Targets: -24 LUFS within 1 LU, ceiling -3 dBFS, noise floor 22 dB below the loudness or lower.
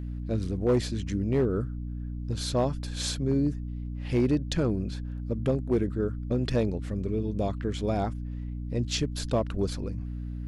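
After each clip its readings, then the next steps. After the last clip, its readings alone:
clipped 0.5%; flat tops at -17.5 dBFS; hum 60 Hz; harmonics up to 300 Hz; hum level -32 dBFS; loudness -29.5 LUFS; peak -17.5 dBFS; loudness target -24.0 LUFS
-> clip repair -17.5 dBFS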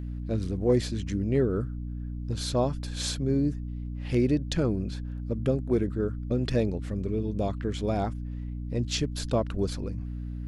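clipped 0.0%; hum 60 Hz; harmonics up to 300 Hz; hum level -32 dBFS
-> notches 60/120/180/240/300 Hz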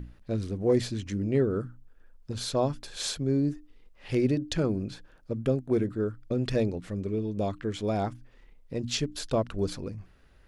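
hum none; loudness -30.0 LUFS; peak -13.5 dBFS; loudness target -24.0 LUFS
-> gain +6 dB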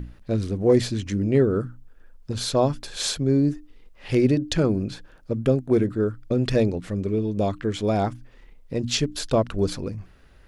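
loudness -24.0 LUFS; peak -7.5 dBFS; noise floor -52 dBFS

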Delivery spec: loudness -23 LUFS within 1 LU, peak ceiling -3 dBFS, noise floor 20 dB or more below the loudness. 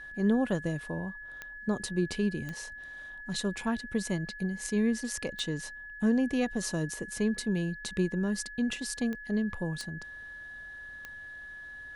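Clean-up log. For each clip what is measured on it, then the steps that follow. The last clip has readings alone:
clicks 6; steady tone 1700 Hz; tone level -42 dBFS; loudness -32.0 LUFS; peak -16.5 dBFS; loudness target -23.0 LUFS
-> de-click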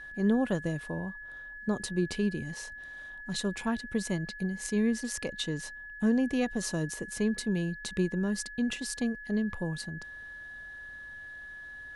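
clicks 0; steady tone 1700 Hz; tone level -42 dBFS
-> notch 1700 Hz, Q 30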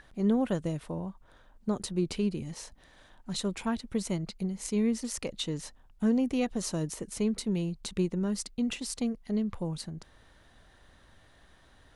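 steady tone none; loudness -32.0 LUFS; peak -17.0 dBFS; loudness target -23.0 LUFS
-> gain +9 dB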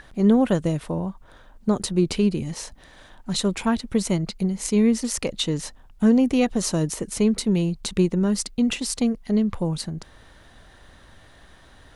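loudness -23.0 LUFS; peak -8.0 dBFS; noise floor -51 dBFS

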